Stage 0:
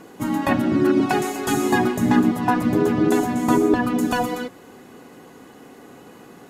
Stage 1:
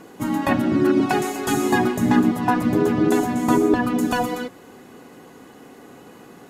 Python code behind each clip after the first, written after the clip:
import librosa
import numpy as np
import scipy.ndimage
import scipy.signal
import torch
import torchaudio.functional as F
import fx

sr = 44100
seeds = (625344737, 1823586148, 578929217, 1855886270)

y = x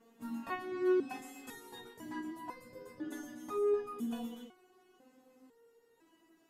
y = fx.resonator_held(x, sr, hz=2.0, low_hz=230.0, high_hz=520.0)
y = y * librosa.db_to_amplitude(-7.0)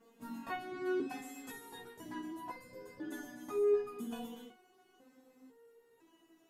y = fx.room_early_taps(x, sr, ms=(15, 65), db=(-5.0, -13.0))
y = y * librosa.db_to_amplitude(-1.0)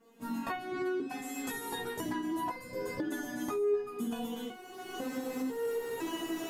y = fx.recorder_agc(x, sr, target_db=-27.5, rise_db_per_s=28.0, max_gain_db=30)